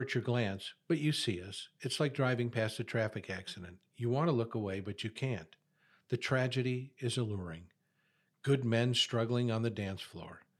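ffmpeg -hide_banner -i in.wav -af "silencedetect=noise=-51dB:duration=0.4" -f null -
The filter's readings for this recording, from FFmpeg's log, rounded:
silence_start: 5.53
silence_end: 6.10 | silence_duration: 0.57
silence_start: 7.65
silence_end: 8.44 | silence_duration: 0.79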